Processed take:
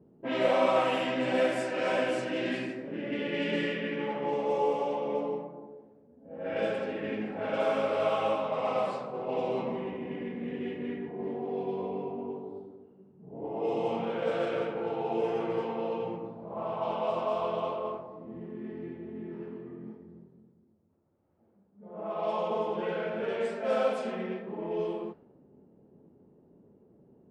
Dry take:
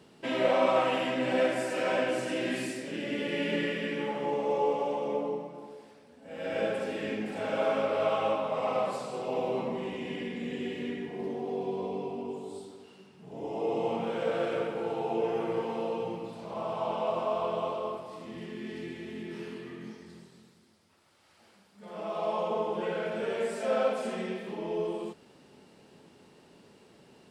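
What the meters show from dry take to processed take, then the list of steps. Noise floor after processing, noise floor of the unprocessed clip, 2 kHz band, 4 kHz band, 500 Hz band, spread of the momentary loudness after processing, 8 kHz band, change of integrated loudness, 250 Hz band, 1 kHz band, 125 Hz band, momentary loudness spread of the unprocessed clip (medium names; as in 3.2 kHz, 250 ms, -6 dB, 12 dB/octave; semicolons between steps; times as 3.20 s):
-62 dBFS, -59 dBFS, -0.5 dB, -1.0 dB, 0.0 dB, 13 LU, no reading, 0.0 dB, 0.0 dB, 0.0 dB, 0.0 dB, 13 LU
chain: level-controlled noise filter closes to 400 Hz, open at -24 dBFS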